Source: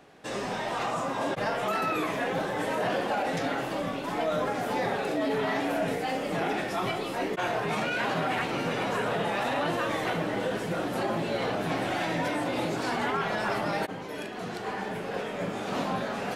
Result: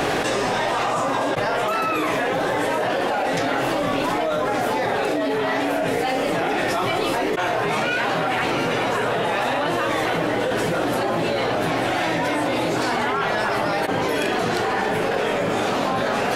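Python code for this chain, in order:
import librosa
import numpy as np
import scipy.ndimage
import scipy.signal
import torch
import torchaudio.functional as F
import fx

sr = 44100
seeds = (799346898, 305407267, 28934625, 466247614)

y = fx.peak_eq(x, sr, hz=190.0, db=-6.5, octaves=0.59)
y = fx.env_flatten(y, sr, amount_pct=100)
y = y * librosa.db_to_amplitude(4.0)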